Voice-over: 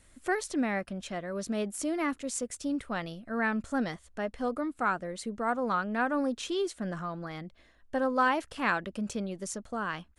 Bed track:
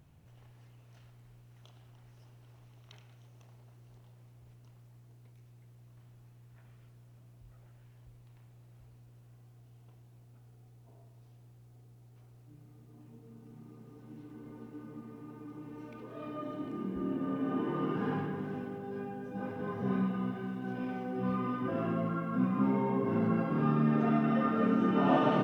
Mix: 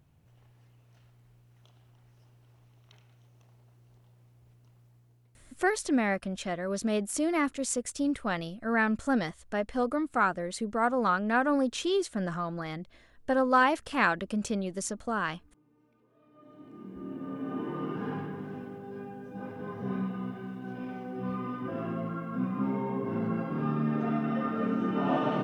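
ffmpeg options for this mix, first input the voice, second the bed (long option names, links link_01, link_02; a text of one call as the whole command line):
ffmpeg -i stem1.wav -i stem2.wav -filter_complex "[0:a]adelay=5350,volume=3dB[link_01];[1:a]volume=16.5dB,afade=type=out:start_time=4.85:duration=0.93:silence=0.125893,afade=type=in:start_time=16.3:duration=1.31:silence=0.105925[link_02];[link_01][link_02]amix=inputs=2:normalize=0" out.wav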